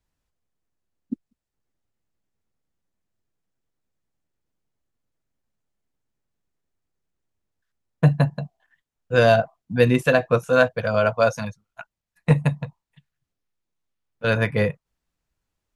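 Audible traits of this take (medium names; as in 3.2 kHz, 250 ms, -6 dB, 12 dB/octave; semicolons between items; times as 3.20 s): noise floor -85 dBFS; spectral tilt -6.0 dB/octave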